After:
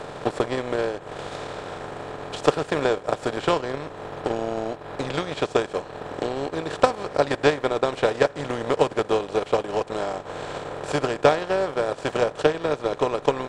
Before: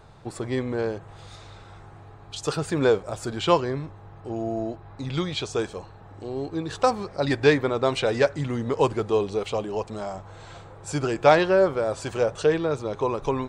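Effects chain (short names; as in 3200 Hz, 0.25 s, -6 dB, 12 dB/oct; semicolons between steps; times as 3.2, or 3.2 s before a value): per-bin compression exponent 0.4; transient shaper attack +11 dB, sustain -12 dB; gain -10 dB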